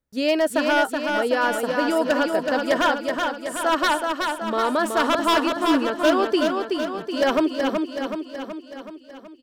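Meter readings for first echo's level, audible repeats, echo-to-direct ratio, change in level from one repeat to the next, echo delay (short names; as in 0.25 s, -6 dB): -4.5 dB, 7, -2.5 dB, -4.5 dB, 0.375 s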